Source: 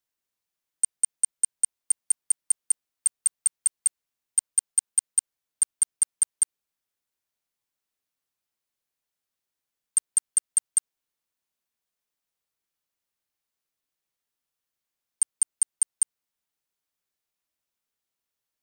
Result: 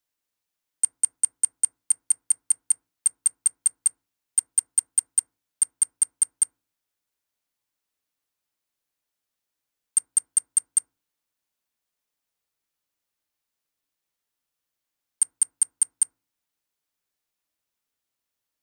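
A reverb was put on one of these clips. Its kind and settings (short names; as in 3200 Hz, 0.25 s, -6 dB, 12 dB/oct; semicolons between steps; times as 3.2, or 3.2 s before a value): FDN reverb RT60 0.36 s, low-frequency decay 1.5×, high-frequency decay 0.3×, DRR 15 dB; gain +1.5 dB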